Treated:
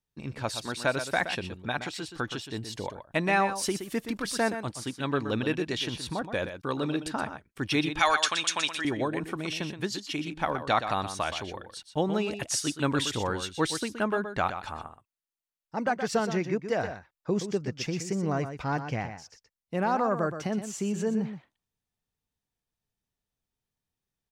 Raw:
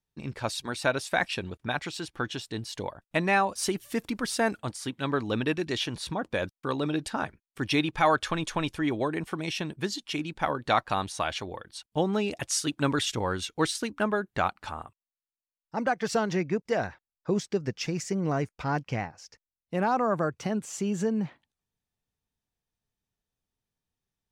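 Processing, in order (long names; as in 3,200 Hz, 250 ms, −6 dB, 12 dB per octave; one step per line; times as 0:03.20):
0:07.99–0:08.85: meter weighting curve ITU-R 468
on a send: single-tap delay 122 ms −9.5 dB
on the sum: level −1 dB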